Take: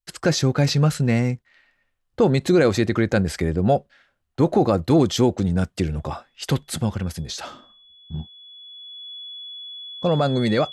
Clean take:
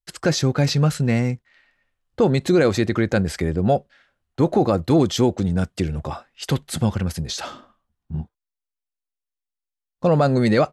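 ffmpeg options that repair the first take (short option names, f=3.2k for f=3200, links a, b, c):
-af "bandreject=f=3.4k:w=30,asetnsamples=n=441:p=0,asendcmd='6.76 volume volume 3dB',volume=0dB"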